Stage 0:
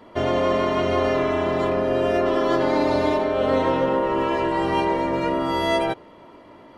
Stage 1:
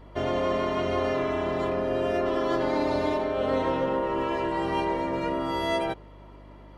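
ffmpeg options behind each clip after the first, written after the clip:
-af "aeval=exprs='val(0)+0.00794*(sin(2*PI*50*n/s)+sin(2*PI*2*50*n/s)/2+sin(2*PI*3*50*n/s)/3+sin(2*PI*4*50*n/s)/4+sin(2*PI*5*50*n/s)/5)':c=same,volume=-5.5dB"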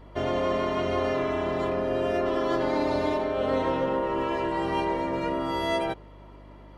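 -af anull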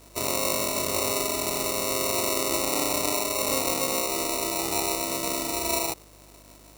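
-af "acrusher=samples=27:mix=1:aa=0.000001,bass=f=250:g=-4,treble=f=4k:g=13,volume=-2.5dB"

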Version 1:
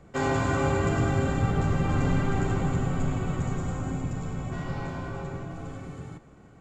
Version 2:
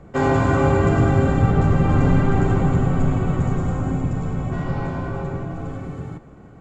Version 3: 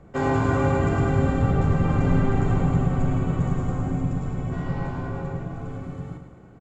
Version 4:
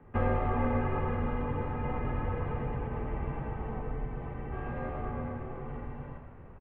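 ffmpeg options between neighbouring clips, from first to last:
-af "highshelf=f=2.3k:g=-10.5,volume=8.5dB"
-af "aecho=1:1:107|214|321|428|535|642:0.376|0.192|0.0978|0.0499|0.0254|0.013,volume=-5dB"
-filter_complex "[0:a]acompressor=threshold=-25dB:ratio=2,asplit=7[a][b][c][d][e][f][g];[b]adelay=486,afreqshift=-84,volume=-13.5dB[h];[c]adelay=972,afreqshift=-168,volume=-18.5dB[i];[d]adelay=1458,afreqshift=-252,volume=-23.6dB[j];[e]adelay=1944,afreqshift=-336,volume=-28.6dB[k];[f]adelay=2430,afreqshift=-420,volume=-33.6dB[l];[g]adelay=2916,afreqshift=-504,volume=-38.7dB[m];[a][h][i][j][k][l][m]amix=inputs=7:normalize=0,highpass=f=230:t=q:w=0.5412,highpass=f=230:t=q:w=1.307,lowpass=f=3k:t=q:w=0.5176,lowpass=f=3k:t=q:w=0.7071,lowpass=f=3k:t=q:w=1.932,afreqshift=-300"

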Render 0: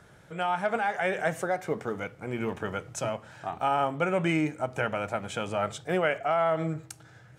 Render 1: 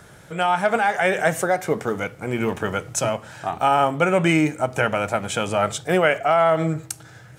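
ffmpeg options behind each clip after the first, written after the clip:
-af "highshelf=f=6.3k:g=8.5,volume=8dB"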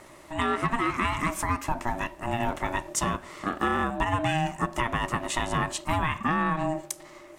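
-af "acompressor=threshold=-19dB:ratio=6,aeval=exprs='val(0)*sin(2*PI*470*n/s)':c=same"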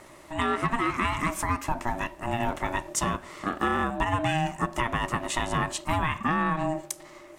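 -af anull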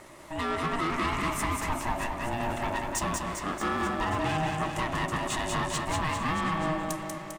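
-filter_complex "[0:a]asoftclip=type=tanh:threshold=-24.5dB,asplit=2[a][b];[b]aecho=0:1:190|399|628.9|881.8|1160:0.631|0.398|0.251|0.158|0.1[c];[a][c]amix=inputs=2:normalize=0"

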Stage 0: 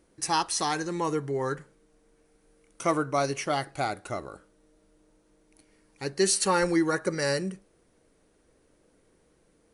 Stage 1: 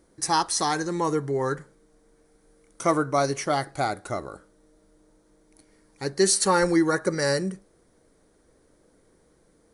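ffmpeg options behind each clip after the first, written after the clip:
-af "equalizer=f=2.7k:w=3.5:g=-9.5,volume=3.5dB"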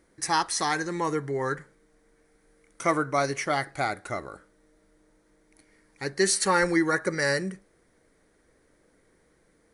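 -af "equalizer=f=2k:t=o:w=0.94:g=9,volume=-3.5dB"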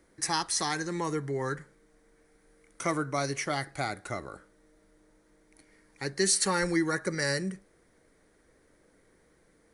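-filter_complex "[0:a]acrossover=split=280|3000[a][b][c];[b]acompressor=threshold=-40dB:ratio=1.5[d];[a][d][c]amix=inputs=3:normalize=0"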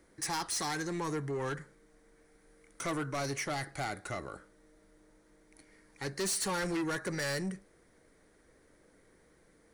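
-af "asoftclip=type=tanh:threshold=-30dB"

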